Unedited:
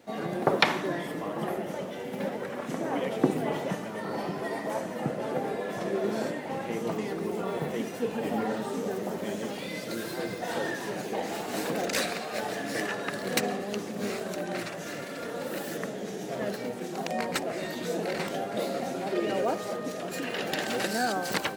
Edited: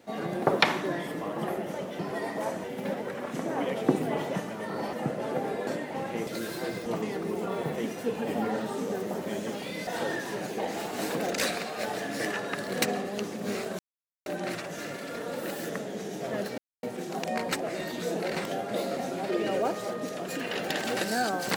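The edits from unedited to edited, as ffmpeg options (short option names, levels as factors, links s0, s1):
-filter_complex "[0:a]asplit=10[s0][s1][s2][s3][s4][s5][s6][s7][s8][s9];[s0]atrim=end=1.992[s10];[s1]atrim=start=4.278:end=4.932[s11];[s2]atrim=start=1.988:end=4.282[s12];[s3]atrim=start=4.928:end=5.672[s13];[s4]atrim=start=6.218:end=6.822[s14];[s5]atrim=start=9.828:end=10.422[s15];[s6]atrim=start=6.818:end=9.832[s16];[s7]atrim=start=10.418:end=14.34,asetpts=PTS-STARTPTS,afade=t=out:st=3.918:d=0.004:c=hsin,apad=pad_dur=0.47[s17];[s8]atrim=start=14.34:end=16.66,asetpts=PTS-STARTPTS,afade=t=in:d=0.004:c=hsin,afade=t=out:st=2.316:d=0.004:c=hsin,apad=pad_dur=0.25[s18];[s9]atrim=start=16.66,asetpts=PTS-STARTPTS,afade=t=in:d=0.004:c=hsin[s19];[s10][s11]acrossfade=d=0.004:c1=hsin:c2=hsin[s20];[s20][s12]acrossfade=d=0.004:c1=hsin:c2=hsin[s21];[s21][s13]acrossfade=d=0.004:c1=hsin:c2=hsin[s22];[s22][s14]acrossfade=d=0.004:c1=hsin:c2=hsin[s23];[s23][s15]acrossfade=d=0.004:c1=hsin:c2=hsin[s24];[s24][s16]acrossfade=d=0.004:c1=hsin:c2=hsin[s25];[s17][s18][s19]concat=n=3:v=0:a=1[s26];[s25][s26]acrossfade=d=0.004:c1=hsin:c2=hsin"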